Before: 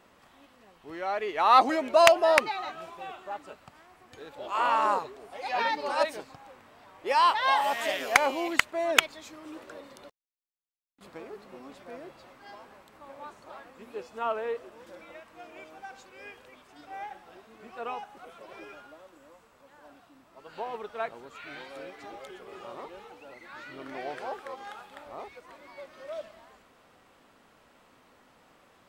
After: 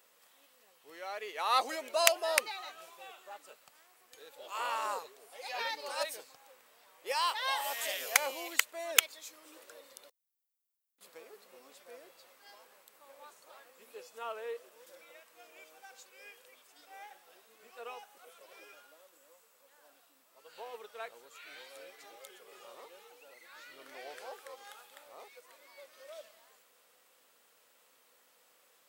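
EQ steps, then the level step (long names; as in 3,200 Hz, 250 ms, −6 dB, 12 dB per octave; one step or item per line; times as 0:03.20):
spectral tilt +4.5 dB per octave
parametric band 490 Hz +10 dB 0.47 octaves
high-shelf EQ 9,800 Hz +6 dB
−11.5 dB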